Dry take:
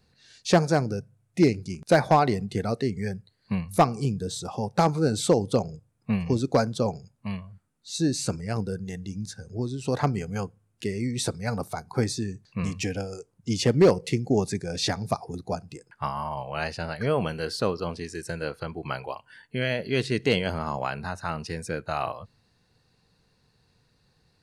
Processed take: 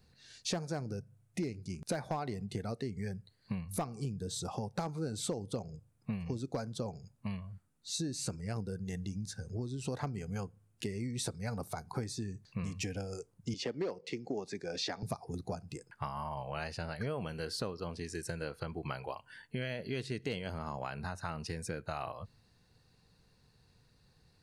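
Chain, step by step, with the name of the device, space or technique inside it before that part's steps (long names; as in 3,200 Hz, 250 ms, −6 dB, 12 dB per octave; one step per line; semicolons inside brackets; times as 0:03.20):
0:13.54–0:15.03: three-way crossover with the lows and the highs turned down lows −19 dB, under 240 Hz, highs −22 dB, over 6,100 Hz
ASMR close-microphone chain (low-shelf EQ 120 Hz +5.5 dB; downward compressor 5 to 1, threshold −32 dBFS, peak gain reduction 17 dB; high-shelf EQ 7,900 Hz +4 dB)
level −3 dB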